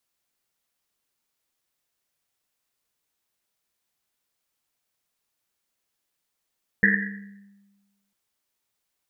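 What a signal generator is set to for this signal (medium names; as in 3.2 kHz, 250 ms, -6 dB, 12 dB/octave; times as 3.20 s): Risset drum length 1.30 s, pitch 200 Hz, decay 1.36 s, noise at 1.8 kHz, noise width 320 Hz, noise 60%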